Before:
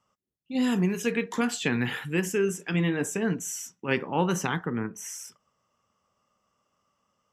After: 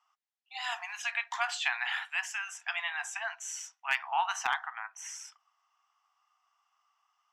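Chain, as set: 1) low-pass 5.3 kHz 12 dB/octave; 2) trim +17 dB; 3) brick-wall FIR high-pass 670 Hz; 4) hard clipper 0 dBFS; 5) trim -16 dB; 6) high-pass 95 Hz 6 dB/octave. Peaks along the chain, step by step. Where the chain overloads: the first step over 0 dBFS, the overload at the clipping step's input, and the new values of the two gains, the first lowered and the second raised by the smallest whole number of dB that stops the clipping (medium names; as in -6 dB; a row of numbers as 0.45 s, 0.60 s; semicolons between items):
-11.0 dBFS, +6.0 dBFS, +3.5 dBFS, 0.0 dBFS, -16.0 dBFS, -15.5 dBFS; step 2, 3.5 dB; step 2 +13 dB, step 5 -12 dB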